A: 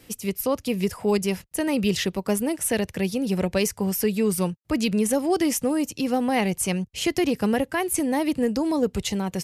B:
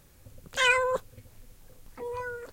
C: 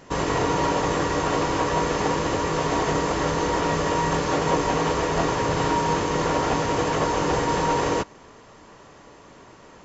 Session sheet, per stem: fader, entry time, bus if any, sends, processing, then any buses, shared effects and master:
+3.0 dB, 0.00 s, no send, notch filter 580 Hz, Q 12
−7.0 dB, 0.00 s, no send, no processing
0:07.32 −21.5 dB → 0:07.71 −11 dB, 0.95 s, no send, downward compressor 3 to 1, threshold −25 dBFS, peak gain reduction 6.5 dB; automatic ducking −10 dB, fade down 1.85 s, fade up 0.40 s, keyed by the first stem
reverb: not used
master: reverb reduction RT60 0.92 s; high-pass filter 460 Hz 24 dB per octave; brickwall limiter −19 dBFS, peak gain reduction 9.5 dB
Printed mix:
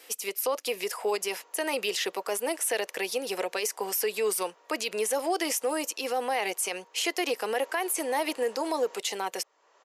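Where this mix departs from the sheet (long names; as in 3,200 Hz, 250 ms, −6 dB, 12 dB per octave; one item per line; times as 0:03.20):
stem B: muted
master: missing reverb reduction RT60 0.92 s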